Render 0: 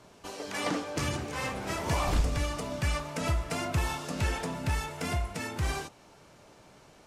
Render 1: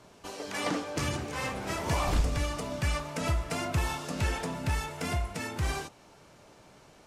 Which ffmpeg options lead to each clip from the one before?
ffmpeg -i in.wav -af anull out.wav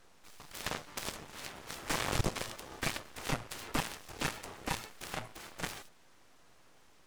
ffmpeg -i in.wav -af "bandreject=frequency=50:width_type=h:width=6,bandreject=frequency=100:width_type=h:width=6,aeval=exprs='abs(val(0))':channel_layout=same,aeval=exprs='0.141*(cos(1*acos(clip(val(0)/0.141,-1,1)))-cos(1*PI/2))+0.00562*(cos(7*acos(clip(val(0)/0.141,-1,1)))-cos(7*PI/2))+0.0282*(cos(8*acos(clip(val(0)/0.141,-1,1)))-cos(8*PI/2))':channel_layout=same" out.wav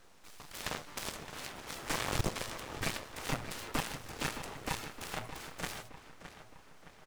ffmpeg -i in.wav -filter_complex "[0:a]asplit=2[link_01][link_02];[link_02]alimiter=level_in=3.5dB:limit=-24dB:level=0:latency=1:release=23,volume=-3.5dB,volume=-3dB[link_03];[link_01][link_03]amix=inputs=2:normalize=0,acrusher=bits=5:mode=log:mix=0:aa=0.000001,asplit=2[link_04][link_05];[link_05]adelay=616,lowpass=frequency=3500:poles=1,volume=-10.5dB,asplit=2[link_06][link_07];[link_07]adelay=616,lowpass=frequency=3500:poles=1,volume=0.53,asplit=2[link_08][link_09];[link_09]adelay=616,lowpass=frequency=3500:poles=1,volume=0.53,asplit=2[link_10][link_11];[link_11]adelay=616,lowpass=frequency=3500:poles=1,volume=0.53,asplit=2[link_12][link_13];[link_13]adelay=616,lowpass=frequency=3500:poles=1,volume=0.53,asplit=2[link_14][link_15];[link_15]adelay=616,lowpass=frequency=3500:poles=1,volume=0.53[link_16];[link_04][link_06][link_08][link_10][link_12][link_14][link_16]amix=inputs=7:normalize=0,volume=-3.5dB" out.wav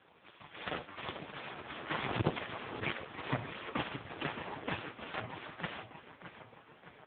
ffmpeg -i in.wav -filter_complex "[0:a]acrossover=split=400|970[link_01][link_02][link_03];[link_03]aeval=exprs='clip(val(0),-1,0.02)':channel_layout=same[link_04];[link_01][link_02][link_04]amix=inputs=3:normalize=0,volume=6.5dB" -ar 8000 -c:a libopencore_amrnb -b:a 4750 out.amr

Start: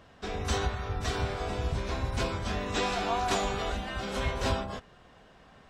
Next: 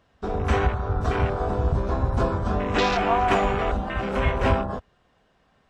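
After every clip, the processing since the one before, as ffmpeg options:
ffmpeg -i in.wav -af "afwtdn=0.0158,volume=8.5dB" out.wav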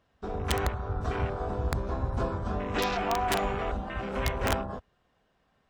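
ffmpeg -i in.wav -af "aeval=exprs='(mod(3.35*val(0)+1,2)-1)/3.35':channel_layout=same,volume=-7dB" out.wav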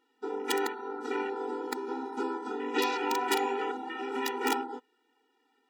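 ffmpeg -i in.wav -af "afftfilt=real='re*eq(mod(floor(b*sr/1024/250),2),1)':imag='im*eq(mod(floor(b*sr/1024/250),2),1)':win_size=1024:overlap=0.75,volume=3.5dB" out.wav

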